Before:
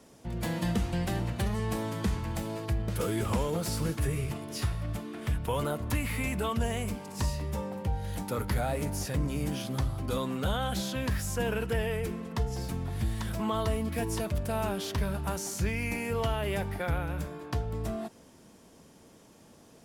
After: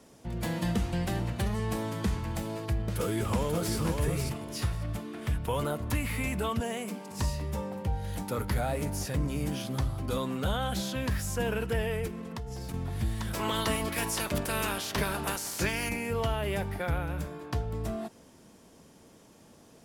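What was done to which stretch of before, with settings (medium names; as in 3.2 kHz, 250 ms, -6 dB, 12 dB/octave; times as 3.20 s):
2.80–3.75 s: echo throw 540 ms, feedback 15%, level -4.5 dB
6.60–7.11 s: elliptic high-pass 170 Hz
12.07–12.74 s: compression, threshold -34 dBFS
13.33–15.88 s: spectral peaks clipped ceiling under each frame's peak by 19 dB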